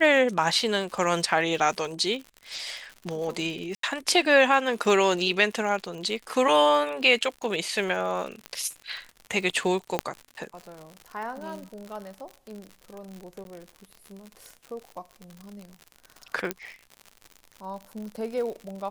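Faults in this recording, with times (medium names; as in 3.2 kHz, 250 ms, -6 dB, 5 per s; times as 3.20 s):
crackle 92 per s -34 dBFS
3.75–3.83 s: dropout 83 ms
8.46 s: pop -19 dBFS
9.99 s: pop -10 dBFS
13.44–13.45 s: dropout 12 ms
16.51 s: pop -11 dBFS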